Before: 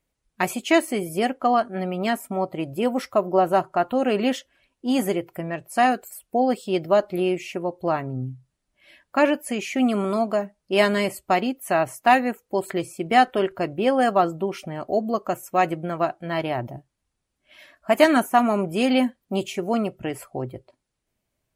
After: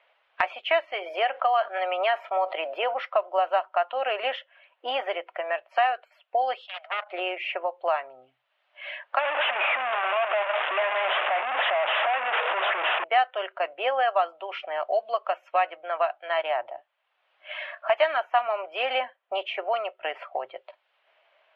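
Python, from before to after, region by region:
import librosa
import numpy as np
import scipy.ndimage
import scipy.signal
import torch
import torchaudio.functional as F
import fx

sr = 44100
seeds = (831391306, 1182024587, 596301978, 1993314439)

y = fx.chain(x, sr, fx.highpass(hz=280.0, slope=12),
    fx.env_flatten(amount_pct=50), at=(0.93, 2.94))
y = fx.chain(y, sr, fx.level_steps(step_db=13),
    fx.steep_highpass(hz=680.0, slope=48),
    fx.doppler_dist(depth_ms=0.73), at=(6.66, 7.11))
y = fx.chain(y, sr, fx.clip_1bit(),
    fx.brickwall_bandstop(low_hz=2900.0, high_hz=5900.0),
    fx.resample_bad(factor=6, down='none', up='filtered'), at=(9.19, 13.04))
y = scipy.signal.sosfilt(scipy.signal.ellip(3, 1.0, 50, [610.0, 3100.0], 'bandpass', fs=sr, output='sos'), y)
y = fx.band_squash(y, sr, depth_pct=70)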